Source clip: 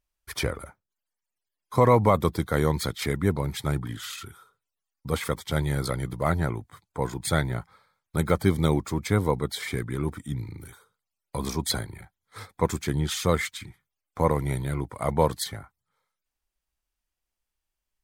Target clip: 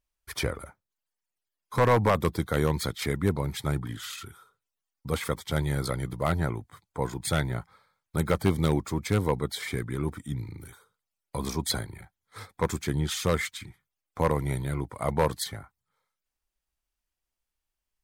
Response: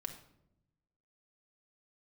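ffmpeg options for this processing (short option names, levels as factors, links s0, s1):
-af "aeval=exprs='0.282*(abs(mod(val(0)/0.282+3,4)-2)-1)':c=same,volume=0.841"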